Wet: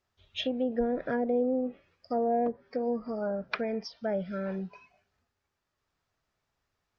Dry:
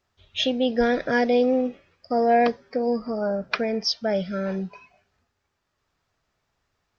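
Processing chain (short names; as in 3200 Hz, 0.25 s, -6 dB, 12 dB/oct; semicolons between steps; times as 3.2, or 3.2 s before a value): treble ducked by the level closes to 640 Hz, closed at -17 dBFS; gain -6.5 dB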